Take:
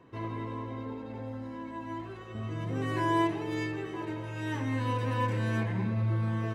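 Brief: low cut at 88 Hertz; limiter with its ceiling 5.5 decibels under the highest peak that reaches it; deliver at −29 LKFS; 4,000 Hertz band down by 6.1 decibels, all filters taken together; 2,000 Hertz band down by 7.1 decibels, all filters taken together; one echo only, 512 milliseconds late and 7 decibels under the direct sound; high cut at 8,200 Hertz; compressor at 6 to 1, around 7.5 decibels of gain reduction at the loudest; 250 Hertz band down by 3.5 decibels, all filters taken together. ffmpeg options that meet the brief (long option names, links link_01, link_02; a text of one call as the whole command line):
ffmpeg -i in.wav -af "highpass=88,lowpass=8200,equalizer=frequency=250:width_type=o:gain=-4.5,equalizer=frequency=2000:width_type=o:gain=-8,equalizer=frequency=4000:width_type=o:gain=-4.5,acompressor=threshold=-33dB:ratio=6,alimiter=level_in=8dB:limit=-24dB:level=0:latency=1,volume=-8dB,aecho=1:1:512:0.447,volume=11dB" out.wav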